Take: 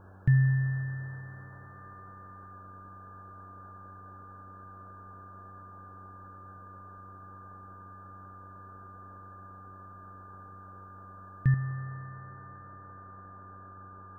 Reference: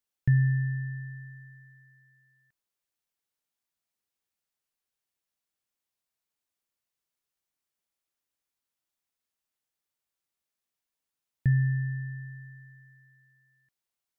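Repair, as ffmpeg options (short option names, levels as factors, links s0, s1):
-af "bandreject=f=95.4:t=h:w=4,bandreject=f=190.8:t=h:w=4,bandreject=f=286.2:t=h:w=4,bandreject=f=381.6:t=h:w=4,bandreject=f=477:t=h:w=4,bandreject=f=572.4:t=h:w=4,bandreject=f=1200:w=30,afwtdn=0.0045,asetnsamples=n=441:p=0,asendcmd='11.54 volume volume 8dB',volume=1"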